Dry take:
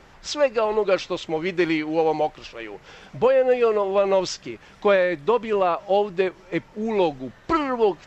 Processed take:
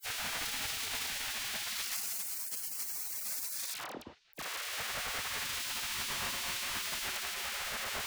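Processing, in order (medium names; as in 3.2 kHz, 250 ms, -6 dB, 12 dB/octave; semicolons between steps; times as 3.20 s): Paulstretch 25×, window 0.05 s, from 1.10 s; hum notches 60/120/180/240/300/360/420/480/540 Hz; in parallel at -2.5 dB: compression 10:1, threshold -34 dBFS, peak gain reduction 16.5 dB; on the sum: Schmitt trigger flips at -33.5 dBFS; phase dispersion lows, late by 61 ms, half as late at 1.4 kHz; on a send at -23.5 dB: cabinet simulation 110–5500 Hz, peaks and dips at 230 Hz +8 dB, 640 Hz +3 dB, 980 Hz +7 dB, 3.3 kHz -7 dB + reverberation RT60 5.3 s, pre-delay 108 ms; on the sum: spectral gate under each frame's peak -20 dB weak; trim -2 dB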